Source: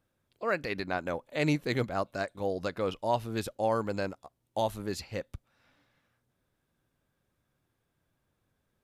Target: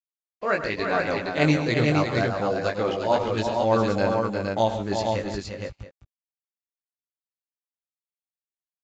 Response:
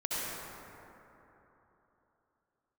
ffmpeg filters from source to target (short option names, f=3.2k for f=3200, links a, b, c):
-filter_complex "[0:a]flanger=delay=17.5:depth=2.9:speed=1.1,agate=range=-33dB:threshold=-54dB:ratio=3:detection=peak,aeval=exprs='sgn(val(0))*max(abs(val(0))-0.00133,0)':c=same,asplit=2[a][b];[b]aecho=0:1:103|134|148|352|465|675:0.237|0.211|0.133|0.473|0.631|0.141[c];[a][c]amix=inputs=2:normalize=0,aresample=16000,aresample=44100,volume=9dB"